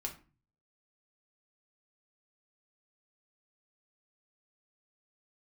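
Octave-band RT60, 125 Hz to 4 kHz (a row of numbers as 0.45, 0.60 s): 0.70, 0.50, 0.35, 0.35, 0.30, 0.25 s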